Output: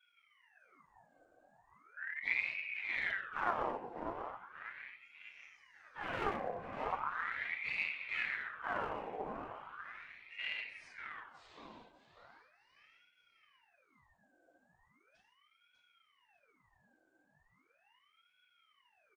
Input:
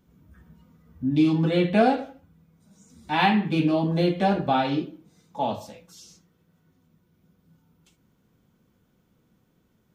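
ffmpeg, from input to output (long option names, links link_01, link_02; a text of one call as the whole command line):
ffmpeg -i in.wav -filter_complex "[0:a]adynamicequalizer=threshold=0.00501:dfrequency=2900:dqfactor=1.4:tfrequency=2900:tqfactor=1.4:attack=5:release=100:ratio=0.375:range=3:mode=cutabove:tftype=bell,acrossover=split=200|1400[link_01][link_02][link_03];[link_01]acompressor=threshold=-40dB:ratio=6[link_04];[link_04][link_02][link_03]amix=inputs=3:normalize=0,aeval=exprs='val(0)+0.00141*sin(2*PI*1800*n/s)':channel_layout=same,afftfilt=real='hypot(re,im)*cos(2*PI*random(0))':imag='hypot(re,im)*sin(2*PI*random(1))':win_size=512:overlap=0.75,asetrate=22888,aresample=44100,aeval=exprs='clip(val(0),-1,0.02)':channel_layout=same,asplit=2[link_05][link_06];[link_06]adelay=594,lowpass=frequency=3900:poles=1,volume=-7dB,asplit=2[link_07][link_08];[link_08]adelay=594,lowpass=frequency=3900:poles=1,volume=0.46,asplit=2[link_09][link_10];[link_10]adelay=594,lowpass=frequency=3900:poles=1,volume=0.46,asplit=2[link_11][link_12];[link_12]adelay=594,lowpass=frequency=3900:poles=1,volume=0.46,asplit=2[link_13][link_14];[link_14]adelay=594,lowpass=frequency=3900:poles=1,volume=0.46[link_15];[link_07][link_09][link_11][link_13][link_15]amix=inputs=5:normalize=0[link_16];[link_05][link_16]amix=inputs=2:normalize=0,aeval=exprs='val(0)*sin(2*PI*1500*n/s+1500*0.6/0.38*sin(2*PI*0.38*n/s))':channel_layout=same,volume=-6dB" out.wav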